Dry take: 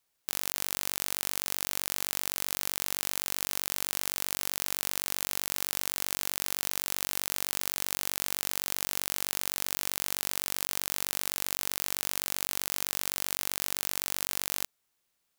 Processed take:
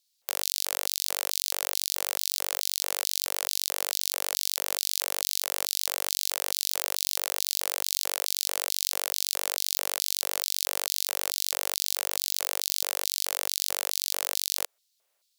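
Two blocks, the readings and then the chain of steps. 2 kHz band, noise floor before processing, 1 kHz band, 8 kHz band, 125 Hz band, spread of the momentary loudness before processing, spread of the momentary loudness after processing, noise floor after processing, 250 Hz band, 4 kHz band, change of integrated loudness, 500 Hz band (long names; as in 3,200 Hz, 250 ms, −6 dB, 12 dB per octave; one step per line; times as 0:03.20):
+0.5 dB, −78 dBFS, +2.5 dB, +4.0 dB, below −20 dB, 0 LU, 0 LU, −74 dBFS, −8.5 dB, +6.0 dB, +3.0 dB, +5.0 dB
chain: pitch vibrato 7.6 Hz 13 cents
auto-filter high-pass square 2.3 Hz 540–4,200 Hz
level +2.5 dB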